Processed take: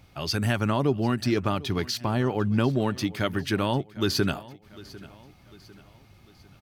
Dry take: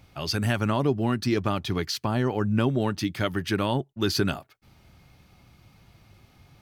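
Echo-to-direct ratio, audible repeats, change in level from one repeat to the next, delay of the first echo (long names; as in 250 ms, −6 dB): −19.0 dB, 3, −6.5 dB, 749 ms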